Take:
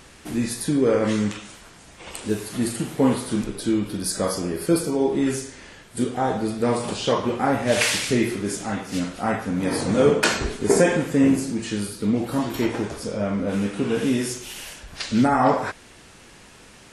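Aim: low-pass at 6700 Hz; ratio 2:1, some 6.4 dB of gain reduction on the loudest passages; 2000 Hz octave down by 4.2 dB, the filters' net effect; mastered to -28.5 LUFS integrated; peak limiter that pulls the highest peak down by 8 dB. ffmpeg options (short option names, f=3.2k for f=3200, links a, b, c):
-af "lowpass=6.7k,equalizer=f=2k:t=o:g=-5.5,acompressor=threshold=-25dB:ratio=2,volume=1dB,alimiter=limit=-18dB:level=0:latency=1"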